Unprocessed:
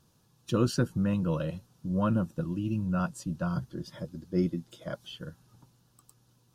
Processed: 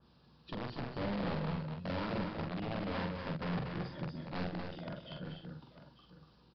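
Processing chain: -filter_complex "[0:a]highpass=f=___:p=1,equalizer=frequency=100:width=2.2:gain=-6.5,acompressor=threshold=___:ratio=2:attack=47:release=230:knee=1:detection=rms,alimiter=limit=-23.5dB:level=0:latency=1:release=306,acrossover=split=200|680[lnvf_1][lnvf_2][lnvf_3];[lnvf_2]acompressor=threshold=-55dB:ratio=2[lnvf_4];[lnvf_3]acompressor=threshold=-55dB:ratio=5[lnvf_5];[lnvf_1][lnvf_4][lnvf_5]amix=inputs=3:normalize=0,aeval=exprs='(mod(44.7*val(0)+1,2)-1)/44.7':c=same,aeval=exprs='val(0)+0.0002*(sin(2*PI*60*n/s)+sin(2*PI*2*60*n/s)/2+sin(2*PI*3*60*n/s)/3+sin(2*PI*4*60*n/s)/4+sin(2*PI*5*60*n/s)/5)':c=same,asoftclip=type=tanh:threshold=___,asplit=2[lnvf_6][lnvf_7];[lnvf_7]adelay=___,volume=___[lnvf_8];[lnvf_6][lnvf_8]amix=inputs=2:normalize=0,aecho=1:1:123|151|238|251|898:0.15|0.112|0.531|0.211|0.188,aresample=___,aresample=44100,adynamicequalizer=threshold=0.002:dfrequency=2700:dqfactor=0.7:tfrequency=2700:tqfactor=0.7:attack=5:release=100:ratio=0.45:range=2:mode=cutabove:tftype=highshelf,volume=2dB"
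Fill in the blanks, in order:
64, -34dB, -36.5dB, 45, -4dB, 11025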